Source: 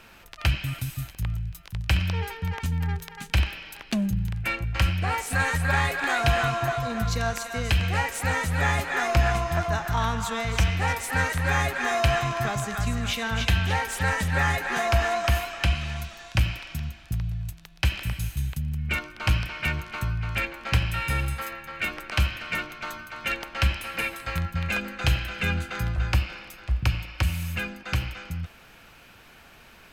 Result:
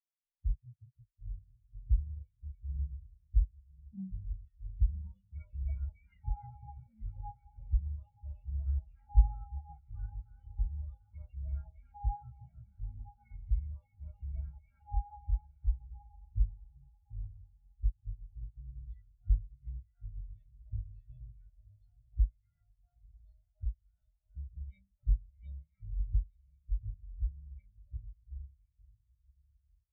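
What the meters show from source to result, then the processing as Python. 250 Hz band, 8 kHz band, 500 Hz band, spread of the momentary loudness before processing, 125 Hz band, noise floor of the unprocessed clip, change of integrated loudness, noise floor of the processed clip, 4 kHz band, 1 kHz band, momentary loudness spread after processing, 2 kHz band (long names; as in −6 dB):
−24.5 dB, below −40 dB, below −40 dB, 9 LU, −12.5 dB, −51 dBFS, −13.0 dB, −77 dBFS, below −40 dB, −25.0 dB, 18 LU, below −40 dB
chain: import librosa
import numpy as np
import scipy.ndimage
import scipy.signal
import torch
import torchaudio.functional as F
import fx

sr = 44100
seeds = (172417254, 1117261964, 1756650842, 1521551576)

p1 = fx.partial_stretch(x, sr, pct=118)
p2 = fx.peak_eq(p1, sr, hz=7400.0, db=-13.0, octaves=1.5)
p3 = p2 + 0.83 * np.pad(p2, (int(1.4 * sr / 1000.0), 0))[:len(p2)]
p4 = fx.env_phaser(p3, sr, low_hz=200.0, high_hz=3600.0, full_db=-18.0)
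p5 = fx.air_absorb(p4, sr, metres=110.0)
p6 = p5 + fx.echo_diffused(p5, sr, ms=999, feedback_pct=52, wet_db=-7.0, dry=0)
p7 = fx.spectral_expand(p6, sr, expansion=2.5)
y = p7 * librosa.db_to_amplitude(-5.5)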